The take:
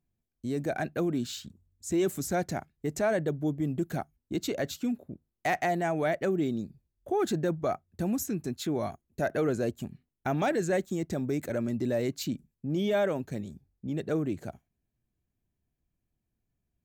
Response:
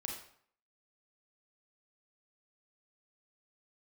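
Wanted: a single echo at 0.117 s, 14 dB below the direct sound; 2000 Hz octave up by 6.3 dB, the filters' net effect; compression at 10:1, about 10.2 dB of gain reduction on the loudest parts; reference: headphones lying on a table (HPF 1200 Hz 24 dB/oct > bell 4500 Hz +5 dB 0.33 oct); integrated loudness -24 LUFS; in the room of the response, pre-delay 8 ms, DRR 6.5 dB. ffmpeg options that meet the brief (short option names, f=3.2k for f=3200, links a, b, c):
-filter_complex "[0:a]equalizer=f=2k:t=o:g=8,acompressor=threshold=-32dB:ratio=10,aecho=1:1:117:0.2,asplit=2[a][b];[1:a]atrim=start_sample=2205,adelay=8[c];[b][c]afir=irnorm=-1:irlink=0,volume=-6dB[d];[a][d]amix=inputs=2:normalize=0,highpass=f=1.2k:w=0.5412,highpass=f=1.2k:w=1.3066,equalizer=f=4.5k:t=o:w=0.33:g=5,volume=18dB"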